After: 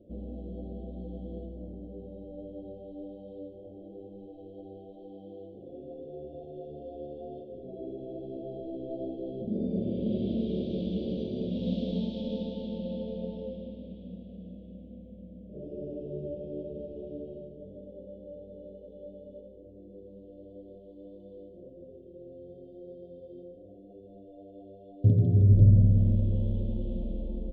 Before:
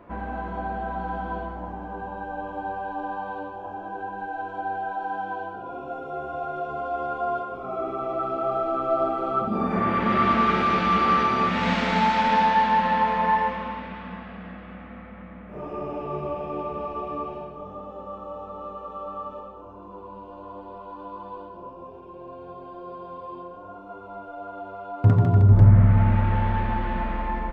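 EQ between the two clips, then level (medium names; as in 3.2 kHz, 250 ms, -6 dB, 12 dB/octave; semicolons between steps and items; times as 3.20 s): Chebyshev band-stop 570–3300 Hz, order 4; distance through air 340 m; -3.5 dB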